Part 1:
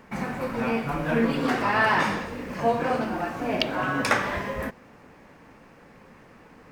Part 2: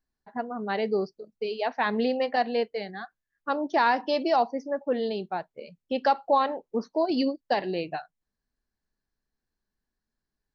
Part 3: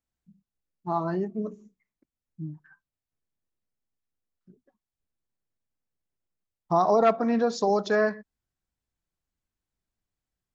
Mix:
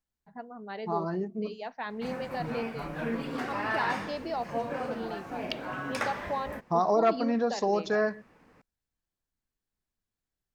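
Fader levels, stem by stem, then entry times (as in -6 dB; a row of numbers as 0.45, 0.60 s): -9.5, -10.5, -3.5 dB; 1.90, 0.00, 0.00 s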